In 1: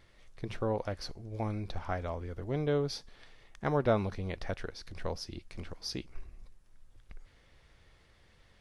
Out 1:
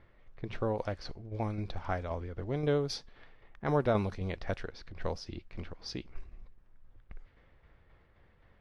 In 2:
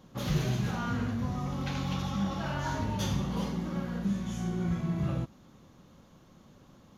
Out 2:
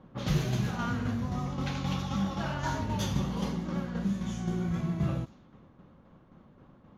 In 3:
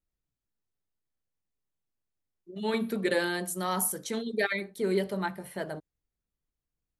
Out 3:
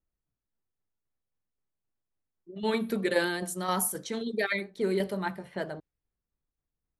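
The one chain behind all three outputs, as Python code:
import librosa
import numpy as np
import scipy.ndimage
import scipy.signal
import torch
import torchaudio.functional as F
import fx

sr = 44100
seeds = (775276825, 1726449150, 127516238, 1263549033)

y = fx.tremolo_shape(x, sr, shape='saw_down', hz=3.8, depth_pct=45)
y = fx.env_lowpass(y, sr, base_hz=1700.0, full_db=-29.5)
y = fx.vibrato(y, sr, rate_hz=8.0, depth_cents=25.0)
y = F.gain(torch.from_numpy(y), 2.5).numpy()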